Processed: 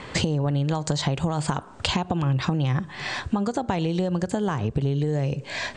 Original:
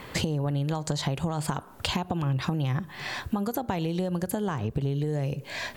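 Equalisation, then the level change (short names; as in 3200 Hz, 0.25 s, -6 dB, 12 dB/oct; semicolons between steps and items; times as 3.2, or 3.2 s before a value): steep low-pass 8800 Hz 72 dB/oct; +4.0 dB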